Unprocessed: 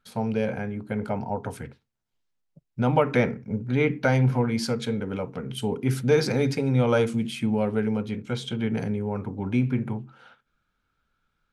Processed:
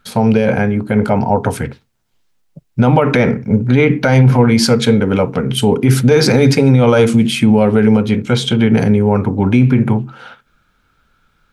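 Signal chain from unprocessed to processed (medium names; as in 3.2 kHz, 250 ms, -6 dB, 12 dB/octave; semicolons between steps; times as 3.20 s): loudness maximiser +17.5 dB; trim -1 dB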